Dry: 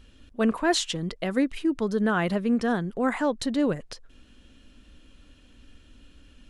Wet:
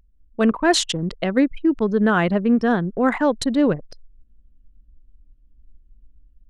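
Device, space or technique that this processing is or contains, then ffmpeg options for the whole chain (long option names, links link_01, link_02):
voice memo with heavy noise removal: -af "anlmdn=15.8,dynaudnorm=framelen=130:gausssize=5:maxgain=6.5dB"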